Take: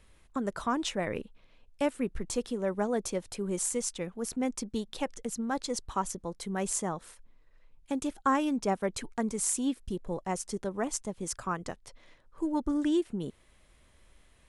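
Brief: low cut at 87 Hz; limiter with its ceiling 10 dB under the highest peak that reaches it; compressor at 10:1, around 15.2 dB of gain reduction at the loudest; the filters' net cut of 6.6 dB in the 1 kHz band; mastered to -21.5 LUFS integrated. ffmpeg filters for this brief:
-af "highpass=87,equalizer=f=1000:t=o:g=-8.5,acompressor=threshold=0.00891:ratio=10,volume=20,alimiter=limit=0.282:level=0:latency=1"

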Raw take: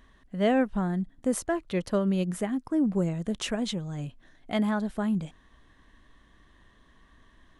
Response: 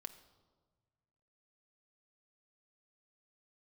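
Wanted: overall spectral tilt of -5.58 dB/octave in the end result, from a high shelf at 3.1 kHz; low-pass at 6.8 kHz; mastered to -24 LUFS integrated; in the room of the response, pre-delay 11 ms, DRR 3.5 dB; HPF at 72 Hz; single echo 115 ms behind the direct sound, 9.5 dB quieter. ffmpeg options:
-filter_complex "[0:a]highpass=72,lowpass=6800,highshelf=f=3100:g=8,aecho=1:1:115:0.335,asplit=2[s0][s1];[1:a]atrim=start_sample=2205,adelay=11[s2];[s1][s2]afir=irnorm=-1:irlink=0,volume=1.19[s3];[s0][s3]amix=inputs=2:normalize=0,volume=1.26"

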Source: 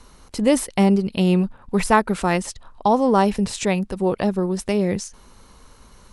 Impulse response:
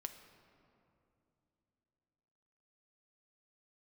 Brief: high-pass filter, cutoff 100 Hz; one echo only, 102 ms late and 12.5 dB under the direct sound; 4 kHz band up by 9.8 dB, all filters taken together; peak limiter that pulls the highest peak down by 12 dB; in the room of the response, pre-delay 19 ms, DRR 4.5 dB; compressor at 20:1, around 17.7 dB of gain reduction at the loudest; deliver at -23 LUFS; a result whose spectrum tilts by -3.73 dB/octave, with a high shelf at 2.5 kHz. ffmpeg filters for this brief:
-filter_complex "[0:a]highpass=100,highshelf=f=2500:g=5,equalizer=f=4000:t=o:g=8.5,acompressor=threshold=0.0398:ratio=20,alimiter=limit=0.0631:level=0:latency=1,aecho=1:1:102:0.237,asplit=2[s0][s1];[1:a]atrim=start_sample=2205,adelay=19[s2];[s1][s2]afir=irnorm=-1:irlink=0,volume=0.891[s3];[s0][s3]amix=inputs=2:normalize=0,volume=3.55"

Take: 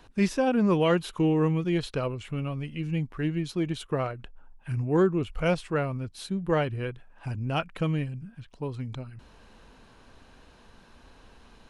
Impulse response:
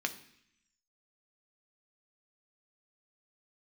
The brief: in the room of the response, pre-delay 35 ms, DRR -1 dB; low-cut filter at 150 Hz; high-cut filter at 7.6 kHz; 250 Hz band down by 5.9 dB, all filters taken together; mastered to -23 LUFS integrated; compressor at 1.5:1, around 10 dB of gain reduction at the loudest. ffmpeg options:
-filter_complex "[0:a]highpass=150,lowpass=7600,equalizer=f=250:t=o:g=-8,acompressor=threshold=0.00316:ratio=1.5,asplit=2[s0][s1];[1:a]atrim=start_sample=2205,adelay=35[s2];[s1][s2]afir=irnorm=-1:irlink=0,volume=0.708[s3];[s0][s3]amix=inputs=2:normalize=0,volume=5.62"

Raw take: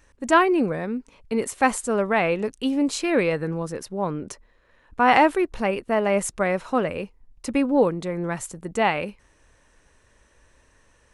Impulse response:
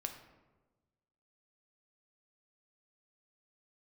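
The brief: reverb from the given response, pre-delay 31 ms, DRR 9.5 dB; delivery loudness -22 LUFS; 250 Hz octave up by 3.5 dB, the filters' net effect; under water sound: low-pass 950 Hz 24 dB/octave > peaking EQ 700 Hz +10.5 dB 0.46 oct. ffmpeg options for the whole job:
-filter_complex "[0:a]equalizer=f=250:t=o:g=4,asplit=2[s0][s1];[1:a]atrim=start_sample=2205,adelay=31[s2];[s1][s2]afir=irnorm=-1:irlink=0,volume=0.376[s3];[s0][s3]amix=inputs=2:normalize=0,lowpass=f=950:w=0.5412,lowpass=f=950:w=1.3066,equalizer=f=700:t=o:w=0.46:g=10.5,volume=0.708"

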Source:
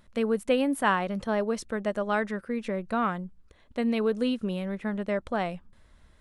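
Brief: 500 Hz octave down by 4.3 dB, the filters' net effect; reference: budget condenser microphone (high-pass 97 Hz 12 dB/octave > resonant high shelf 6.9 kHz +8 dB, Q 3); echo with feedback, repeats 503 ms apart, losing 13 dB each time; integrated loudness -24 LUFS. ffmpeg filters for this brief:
-af "highpass=97,equalizer=f=500:t=o:g=-5,highshelf=f=6900:t=q:w=3:g=8,aecho=1:1:503|1006|1509:0.224|0.0493|0.0108,volume=2.11"

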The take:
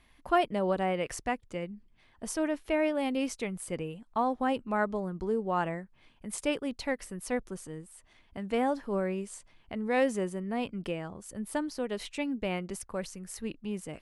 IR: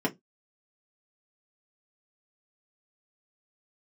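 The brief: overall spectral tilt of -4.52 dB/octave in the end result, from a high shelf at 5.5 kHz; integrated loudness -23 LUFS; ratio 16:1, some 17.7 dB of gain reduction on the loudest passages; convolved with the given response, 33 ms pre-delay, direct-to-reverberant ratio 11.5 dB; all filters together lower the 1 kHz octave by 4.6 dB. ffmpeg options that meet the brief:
-filter_complex "[0:a]equalizer=f=1000:t=o:g=-7,highshelf=f=5500:g=4.5,acompressor=threshold=0.01:ratio=16,asplit=2[s0][s1];[1:a]atrim=start_sample=2205,adelay=33[s2];[s1][s2]afir=irnorm=-1:irlink=0,volume=0.0944[s3];[s0][s3]amix=inputs=2:normalize=0,volume=11.2"

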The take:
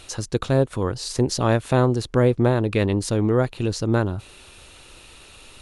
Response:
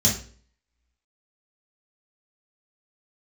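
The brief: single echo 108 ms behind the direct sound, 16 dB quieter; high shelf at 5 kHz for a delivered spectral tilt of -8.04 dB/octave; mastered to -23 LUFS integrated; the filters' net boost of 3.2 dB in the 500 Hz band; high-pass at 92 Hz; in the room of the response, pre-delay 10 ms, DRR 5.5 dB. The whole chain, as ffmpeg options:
-filter_complex "[0:a]highpass=92,equalizer=f=500:t=o:g=4,highshelf=f=5000:g=-5,aecho=1:1:108:0.158,asplit=2[s0][s1];[1:a]atrim=start_sample=2205,adelay=10[s2];[s1][s2]afir=irnorm=-1:irlink=0,volume=0.126[s3];[s0][s3]amix=inputs=2:normalize=0,volume=0.473"

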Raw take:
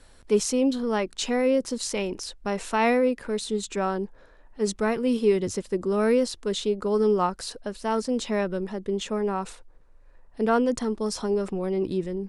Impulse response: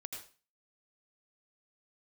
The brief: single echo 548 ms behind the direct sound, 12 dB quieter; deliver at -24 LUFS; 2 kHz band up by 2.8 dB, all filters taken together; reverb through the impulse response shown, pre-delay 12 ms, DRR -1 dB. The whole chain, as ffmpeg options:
-filter_complex "[0:a]equalizer=f=2000:t=o:g=3.5,aecho=1:1:548:0.251,asplit=2[s0][s1];[1:a]atrim=start_sample=2205,adelay=12[s2];[s1][s2]afir=irnorm=-1:irlink=0,volume=1.5[s3];[s0][s3]amix=inputs=2:normalize=0,volume=0.794"

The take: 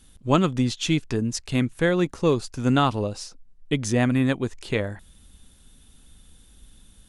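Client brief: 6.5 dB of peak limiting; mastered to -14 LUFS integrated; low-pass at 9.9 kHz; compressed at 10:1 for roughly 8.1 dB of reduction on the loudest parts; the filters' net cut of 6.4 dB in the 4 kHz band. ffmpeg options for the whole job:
-af "lowpass=9900,equalizer=f=4000:t=o:g=-8.5,acompressor=threshold=0.0708:ratio=10,volume=7.94,alimiter=limit=0.75:level=0:latency=1"

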